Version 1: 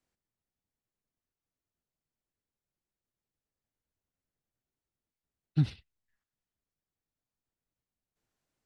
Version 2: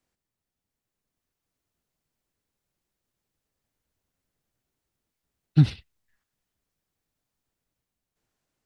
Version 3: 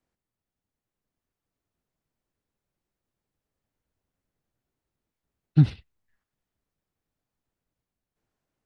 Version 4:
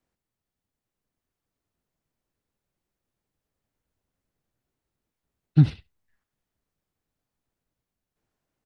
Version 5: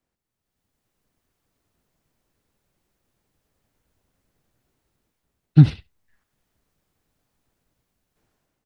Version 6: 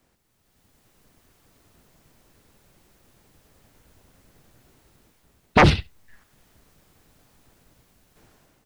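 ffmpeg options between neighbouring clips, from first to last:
-af "dynaudnorm=f=200:g=11:m=1.78,volume=1.58"
-af "highshelf=f=2500:g=-9"
-af "aecho=1:1:72:0.0631,volume=1.12"
-af "dynaudnorm=f=210:g=5:m=3.35"
-af "aeval=exprs='0.891*sin(PI/2*8.91*val(0)/0.891)':c=same,volume=0.398"

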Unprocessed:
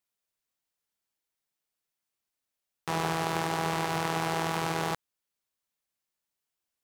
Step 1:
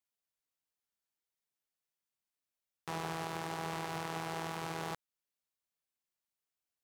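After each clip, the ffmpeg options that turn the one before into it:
-af "alimiter=limit=0.133:level=0:latency=1:release=359,volume=0.473"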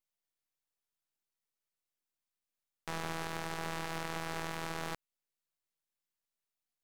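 -af "aeval=exprs='max(val(0),0)':c=same,volume=1.33"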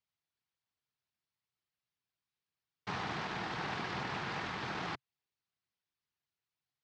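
-af "afftfilt=real='hypot(re,im)*cos(2*PI*random(0))':imag='hypot(re,im)*sin(2*PI*random(1))':win_size=512:overlap=0.75,highpass=120,equalizer=f=130:t=q:w=4:g=3,equalizer=f=270:t=q:w=4:g=-3,equalizer=f=550:t=q:w=4:g=-8,lowpass=f=5100:w=0.5412,lowpass=f=5100:w=1.3066,volume=2.51"

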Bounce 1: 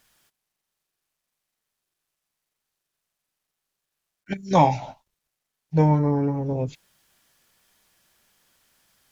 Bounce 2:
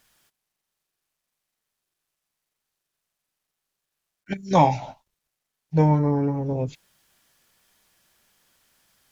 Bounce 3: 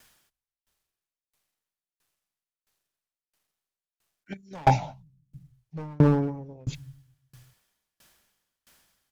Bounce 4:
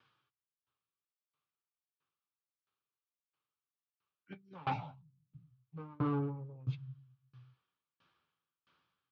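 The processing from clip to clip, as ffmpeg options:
-af anull
-filter_complex "[0:a]acrossover=split=100[s0][s1];[s0]aecho=1:1:250|450|610|738|840.4:0.631|0.398|0.251|0.158|0.1[s2];[s1]asoftclip=type=hard:threshold=0.133[s3];[s2][s3]amix=inputs=2:normalize=0,aeval=exprs='val(0)*pow(10,-33*if(lt(mod(1.5*n/s,1),2*abs(1.5)/1000),1-mod(1.5*n/s,1)/(2*abs(1.5)/1000),(mod(1.5*n/s,1)-2*abs(1.5)/1000)/(1-2*abs(1.5)/1000))/20)':c=same,volume=2.37"
-af "flanger=delay=8.7:depth=3.3:regen=-31:speed=0.3:shape=triangular,asoftclip=type=hard:threshold=0.0631,highpass=110,equalizer=f=130:t=q:w=4:g=9,equalizer=f=210:t=q:w=4:g=-6,equalizer=f=650:t=q:w=4:g=-9,equalizer=f=1200:t=q:w=4:g=9,equalizer=f=1900:t=q:w=4:g=-8,lowpass=f=3500:w=0.5412,lowpass=f=3500:w=1.3066,volume=0.531"

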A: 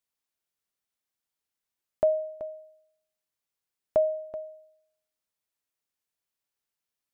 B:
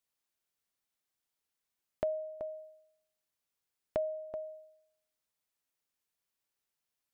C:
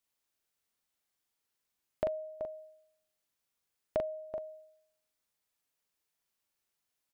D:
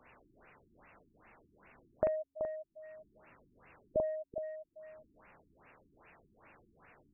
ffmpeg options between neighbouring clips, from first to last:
-af "acompressor=threshold=0.0112:ratio=2"
-filter_complex "[0:a]asplit=2[s0][s1];[s1]adelay=41,volume=0.668[s2];[s0][s2]amix=inputs=2:normalize=0,volume=1.12"
-af "aeval=exprs='val(0)+0.5*0.00531*sgn(val(0))':c=same,afftfilt=real='re*lt(b*sr/1024,360*pow(2900/360,0.5+0.5*sin(2*PI*2.5*pts/sr)))':imag='im*lt(b*sr/1024,360*pow(2900/360,0.5+0.5*sin(2*PI*2.5*pts/sr)))':win_size=1024:overlap=0.75,volume=1.12"

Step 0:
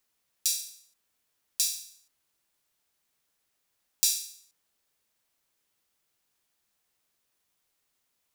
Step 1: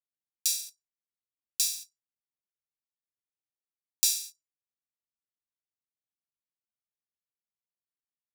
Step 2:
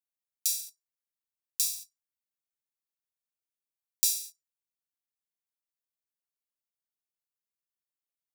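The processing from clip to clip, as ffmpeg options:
-af "anlmdn=0.0398,highpass=110"
-af "crystalizer=i=1:c=0,volume=0.473"

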